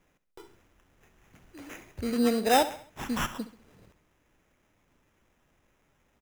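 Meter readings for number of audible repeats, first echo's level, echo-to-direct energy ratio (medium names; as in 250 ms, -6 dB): 3, -14.0 dB, -13.0 dB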